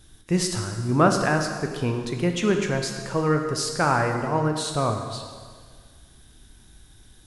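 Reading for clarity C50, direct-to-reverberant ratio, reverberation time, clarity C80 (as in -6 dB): 5.5 dB, 3.5 dB, 1.7 s, 7.0 dB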